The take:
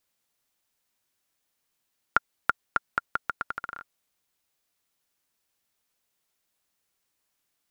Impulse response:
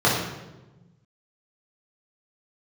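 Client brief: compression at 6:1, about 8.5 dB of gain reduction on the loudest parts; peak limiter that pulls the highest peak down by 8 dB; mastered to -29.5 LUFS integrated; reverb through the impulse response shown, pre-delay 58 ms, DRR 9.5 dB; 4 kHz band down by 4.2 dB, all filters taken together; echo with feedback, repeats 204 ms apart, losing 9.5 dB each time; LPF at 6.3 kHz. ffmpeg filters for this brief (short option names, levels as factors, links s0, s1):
-filter_complex "[0:a]lowpass=6300,equalizer=f=4000:t=o:g=-5.5,acompressor=threshold=0.0398:ratio=6,alimiter=limit=0.15:level=0:latency=1,aecho=1:1:204|408|612|816:0.335|0.111|0.0365|0.012,asplit=2[s0][s1];[1:a]atrim=start_sample=2205,adelay=58[s2];[s1][s2]afir=irnorm=-1:irlink=0,volume=0.0335[s3];[s0][s3]amix=inputs=2:normalize=0,volume=3.55"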